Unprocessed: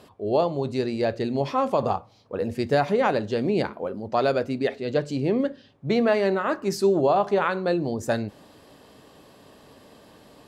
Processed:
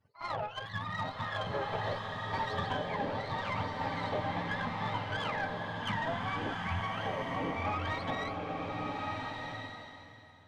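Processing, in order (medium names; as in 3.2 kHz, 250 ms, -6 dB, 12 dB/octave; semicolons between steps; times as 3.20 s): spectrum inverted on a logarithmic axis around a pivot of 660 Hz; expander -40 dBFS; compression 6:1, threshold -33 dBFS, peak gain reduction 15 dB; comb of notches 360 Hz; pre-echo 57 ms -13.5 dB; Chebyshev shaper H 4 -21 dB, 7 -32 dB, 8 -36 dB, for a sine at -24 dBFS; swelling reverb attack 1400 ms, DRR 0 dB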